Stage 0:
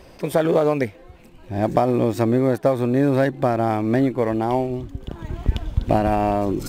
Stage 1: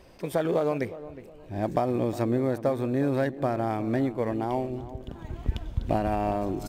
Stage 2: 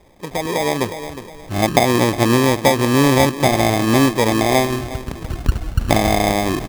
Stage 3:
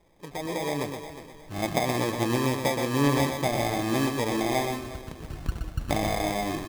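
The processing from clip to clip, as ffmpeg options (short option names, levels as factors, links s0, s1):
-filter_complex "[0:a]asplit=2[s0][s1];[s1]adelay=362,lowpass=f=1100:p=1,volume=0.2,asplit=2[s2][s3];[s3]adelay=362,lowpass=f=1100:p=1,volume=0.35,asplit=2[s4][s5];[s5]adelay=362,lowpass=f=1100:p=1,volume=0.35[s6];[s0][s2][s4][s6]amix=inputs=4:normalize=0,volume=0.422"
-af "acrusher=samples=31:mix=1:aa=0.000001,dynaudnorm=f=510:g=3:m=3.55,volume=1.19"
-filter_complex "[0:a]flanger=delay=5.9:depth=1.1:regen=66:speed=1.8:shape=sinusoidal,asplit=2[s0][s1];[s1]aecho=0:1:122:0.501[s2];[s0][s2]amix=inputs=2:normalize=0,volume=0.422"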